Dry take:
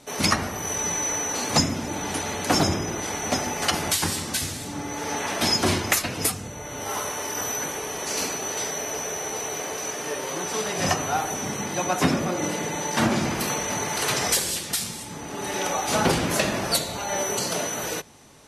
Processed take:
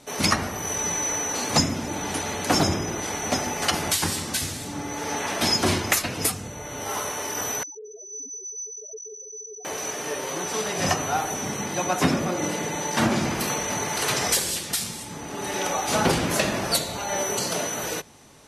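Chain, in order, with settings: 7.63–9.65 s: loudest bins only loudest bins 2

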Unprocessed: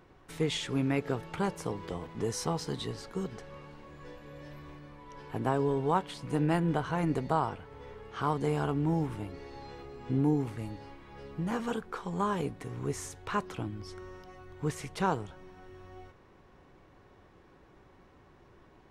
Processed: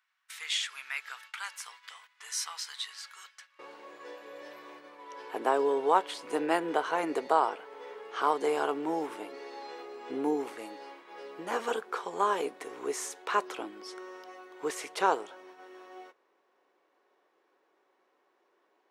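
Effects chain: high-pass 1.4 kHz 24 dB/octave, from 3.59 s 370 Hz; gate -55 dBFS, range -14 dB; trim +4.5 dB

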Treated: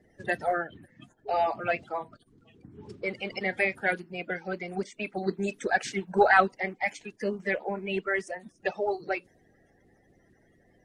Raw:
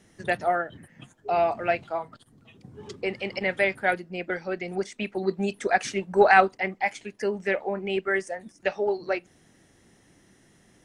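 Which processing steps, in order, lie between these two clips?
coarse spectral quantiser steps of 30 dB; tape noise reduction on one side only decoder only; trim -2.5 dB

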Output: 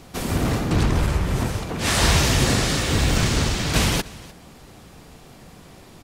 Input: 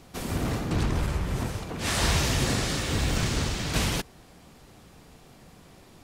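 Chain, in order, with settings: delay 300 ms -21 dB; trim +6.5 dB

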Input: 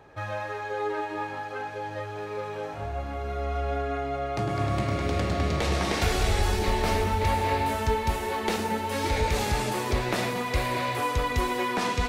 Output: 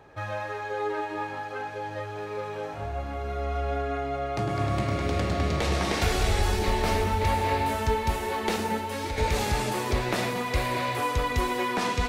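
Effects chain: 8.77–9.18 s: compression 4:1, threshold -29 dBFS, peak gain reduction 7 dB

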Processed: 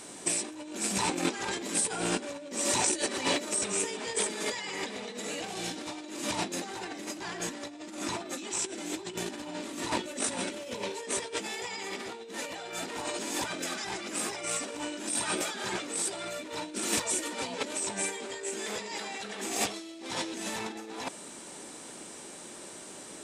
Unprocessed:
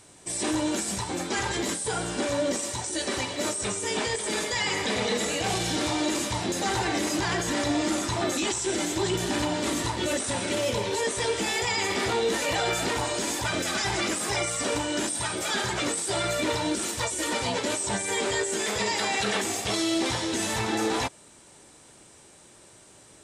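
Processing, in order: rattle on loud lows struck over -44 dBFS, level -30 dBFS; resonant low shelf 150 Hz -11 dB, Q 1.5; compressor with a negative ratio -33 dBFS, ratio -0.5

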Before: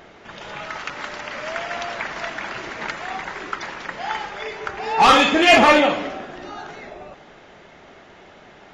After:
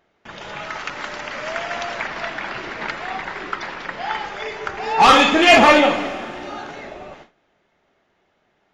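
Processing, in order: Schroeder reverb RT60 3.2 s, combs from 27 ms, DRR 14.5 dB; gate with hold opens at -34 dBFS; 2.06–4.25 s: peaking EQ 6.6 kHz -7 dB 0.44 oct; trim +1.5 dB

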